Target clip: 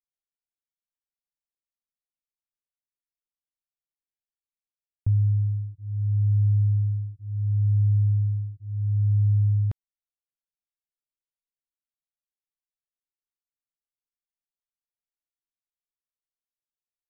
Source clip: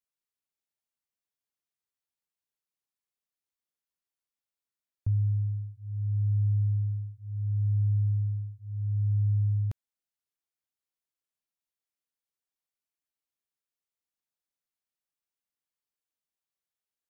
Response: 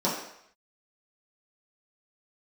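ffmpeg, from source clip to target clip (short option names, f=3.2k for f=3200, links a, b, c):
-af "anlmdn=0.1,volume=5dB"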